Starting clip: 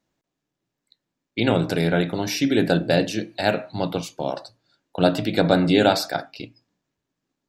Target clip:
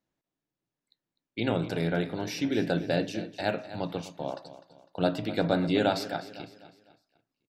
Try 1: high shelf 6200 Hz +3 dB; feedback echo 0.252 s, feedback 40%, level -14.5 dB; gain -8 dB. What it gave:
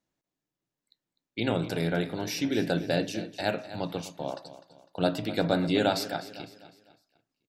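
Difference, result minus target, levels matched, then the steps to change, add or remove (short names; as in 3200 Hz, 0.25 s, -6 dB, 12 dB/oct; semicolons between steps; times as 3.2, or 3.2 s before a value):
8000 Hz band +4.5 dB
change: high shelf 6200 Hz -6.5 dB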